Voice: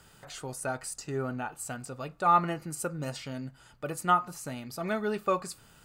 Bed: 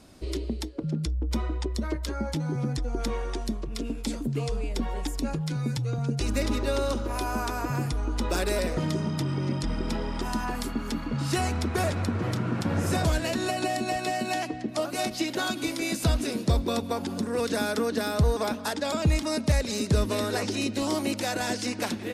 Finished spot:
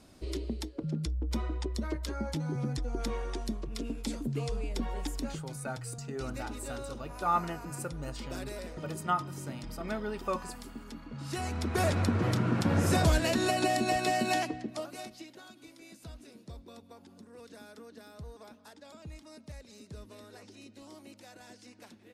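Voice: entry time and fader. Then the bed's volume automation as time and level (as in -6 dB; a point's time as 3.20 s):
5.00 s, -5.5 dB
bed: 5.17 s -4.5 dB
5.52 s -14 dB
11.09 s -14 dB
11.92 s 0 dB
14.37 s 0 dB
15.42 s -23 dB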